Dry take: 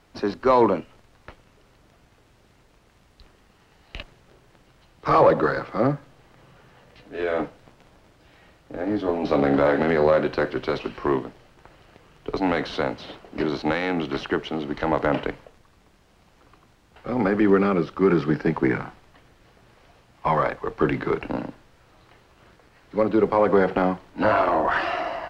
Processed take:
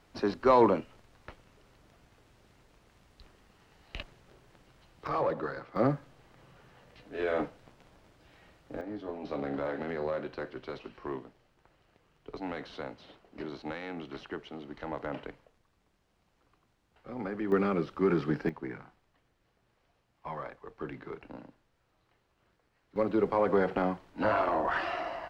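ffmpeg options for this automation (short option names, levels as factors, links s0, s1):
-af "asetnsamples=n=441:p=0,asendcmd='5.07 volume volume -14dB;5.76 volume volume -5.5dB;8.81 volume volume -15dB;17.52 volume volume -8dB;18.49 volume volume -18dB;22.96 volume volume -8dB',volume=0.596"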